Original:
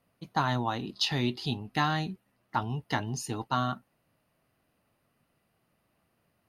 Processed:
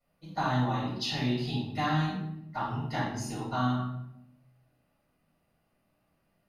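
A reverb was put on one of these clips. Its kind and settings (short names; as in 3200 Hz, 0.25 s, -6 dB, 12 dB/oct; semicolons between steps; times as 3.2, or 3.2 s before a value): shoebox room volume 220 m³, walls mixed, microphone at 6.7 m; gain -17.5 dB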